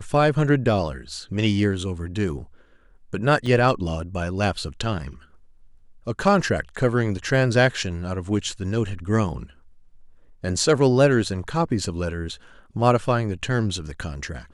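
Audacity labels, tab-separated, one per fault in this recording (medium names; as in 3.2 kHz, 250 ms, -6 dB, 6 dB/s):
3.460000	3.460000	dropout 3.3 ms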